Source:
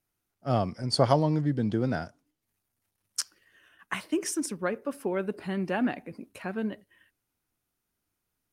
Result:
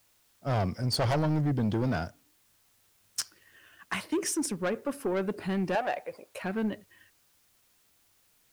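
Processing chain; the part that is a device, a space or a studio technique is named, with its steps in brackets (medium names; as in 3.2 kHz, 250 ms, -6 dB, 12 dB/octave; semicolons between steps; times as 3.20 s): open-reel tape (saturation -26.5 dBFS, distortion -7 dB; peaking EQ 93 Hz +4.5 dB 0.83 oct; white noise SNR 35 dB); 5.75–6.41 s: resonant low shelf 370 Hz -13 dB, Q 3; trim +3 dB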